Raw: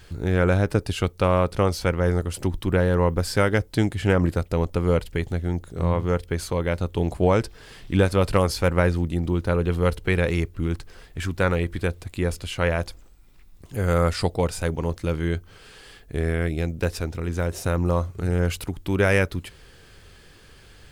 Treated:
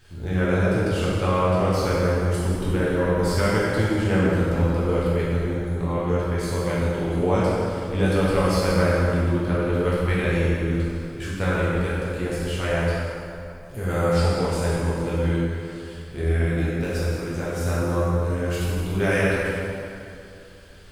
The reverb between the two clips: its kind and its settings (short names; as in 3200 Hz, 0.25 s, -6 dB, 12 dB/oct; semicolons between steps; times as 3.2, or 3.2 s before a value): plate-style reverb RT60 2.6 s, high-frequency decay 0.7×, DRR -8.5 dB; gain -8.5 dB